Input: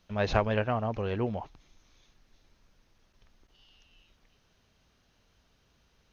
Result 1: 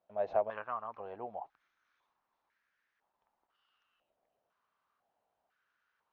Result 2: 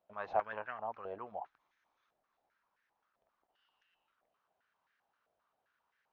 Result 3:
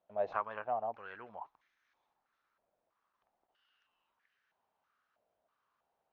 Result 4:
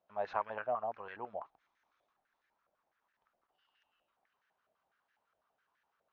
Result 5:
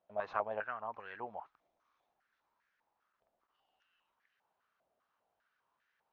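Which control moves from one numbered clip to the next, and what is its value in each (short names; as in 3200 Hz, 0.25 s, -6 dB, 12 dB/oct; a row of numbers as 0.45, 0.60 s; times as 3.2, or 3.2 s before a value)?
stepped band-pass, rate: 2, 7.6, 3.1, 12, 5 Hz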